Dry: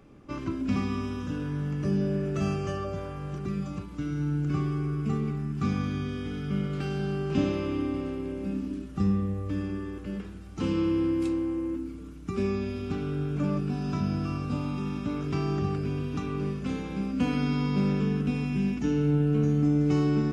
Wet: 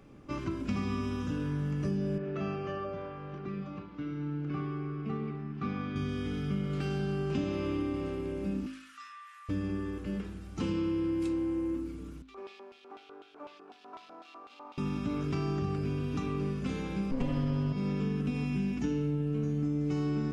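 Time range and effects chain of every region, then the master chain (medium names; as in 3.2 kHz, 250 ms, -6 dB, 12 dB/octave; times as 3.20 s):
2.18–5.96 s: high-pass 340 Hz 6 dB/octave + distance through air 280 m
8.66–9.49 s: steep high-pass 1.2 kHz 48 dB/octave + treble shelf 3.6 kHz -7.5 dB + level flattener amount 50%
12.22–14.78 s: median filter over 15 samples + high-pass 310 Hz 24 dB/octave + LFO band-pass square 4 Hz 880–3300 Hz
17.11–17.73 s: comb filter that takes the minimum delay 1 ms + tilt EQ -2 dB/octave + comb 7.4 ms, depth 98%
whole clip: de-hum 52.54 Hz, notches 33; compression, threshold -28 dBFS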